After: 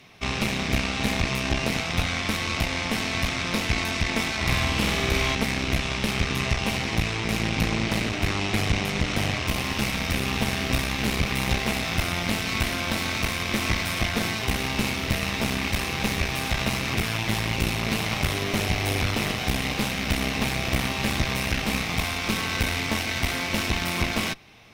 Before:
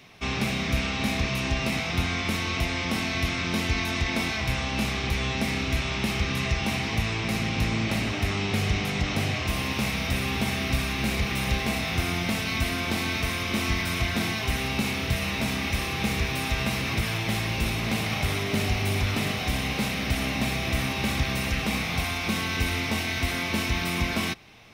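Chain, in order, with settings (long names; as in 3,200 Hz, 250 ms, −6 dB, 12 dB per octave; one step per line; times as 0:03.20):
harmonic generator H 4 −10 dB, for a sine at −12.5 dBFS
0:04.36–0:05.35: flutter between parallel walls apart 8.3 metres, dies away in 0.96 s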